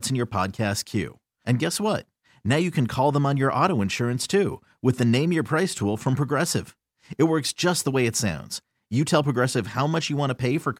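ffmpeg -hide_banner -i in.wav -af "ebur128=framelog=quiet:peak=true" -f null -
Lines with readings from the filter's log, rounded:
Integrated loudness:
  I:         -23.9 LUFS
  Threshold: -34.2 LUFS
Loudness range:
  LRA:         1.8 LU
  Threshold: -43.9 LUFS
  LRA low:   -24.8 LUFS
  LRA high:  -23.0 LUFS
True peak:
  Peak:       -6.9 dBFS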